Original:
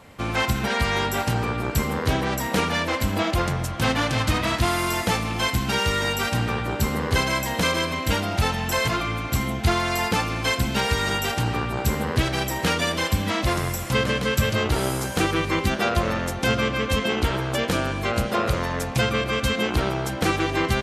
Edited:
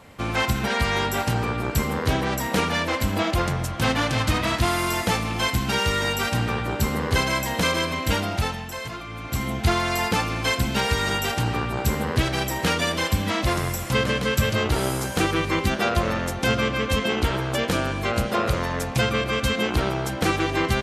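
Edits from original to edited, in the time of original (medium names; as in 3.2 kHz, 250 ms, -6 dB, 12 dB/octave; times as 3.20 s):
8.24–9.56 s: dip -10 dB, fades 0.48 s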